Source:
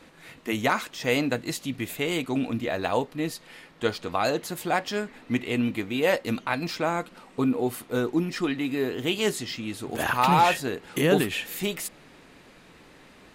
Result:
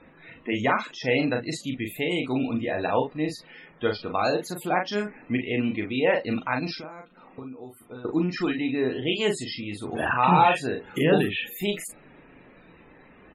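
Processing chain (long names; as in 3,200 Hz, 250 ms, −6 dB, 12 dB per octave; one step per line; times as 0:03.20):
0:06.75–0:08.05: downward compressor 8 to 1, threshold −39 dBFS, peak gain reduction 18.5 dB
spectral peaks only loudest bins 64
double-tracking delay 39 ms −5 dB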